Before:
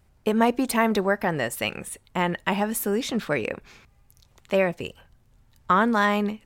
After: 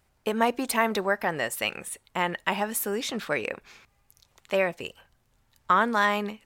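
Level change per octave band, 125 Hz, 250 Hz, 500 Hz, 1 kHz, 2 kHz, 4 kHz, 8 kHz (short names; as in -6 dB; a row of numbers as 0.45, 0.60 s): -8.0, -7.0, -3.5, -1.0, -0.5, 0.0, 0.0 dB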